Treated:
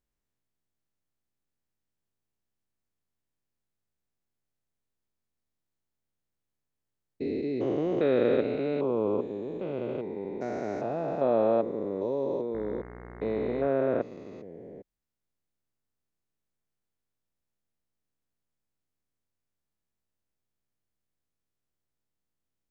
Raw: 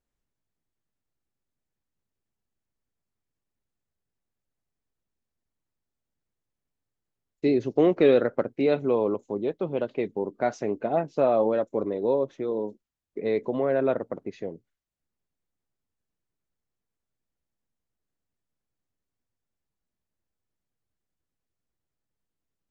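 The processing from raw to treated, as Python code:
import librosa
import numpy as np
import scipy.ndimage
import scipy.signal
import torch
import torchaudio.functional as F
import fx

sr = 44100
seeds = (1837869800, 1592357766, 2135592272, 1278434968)

y = fx.spec_steps(x, sr, hold_ms=400)
y = fx.dmg_buzz(y, sr, base_hz=60.0, harmonics=36, level_db=-45.0, tilt_db=-4, odd_only=False, at=(12.53, 13.66), fade=0.02)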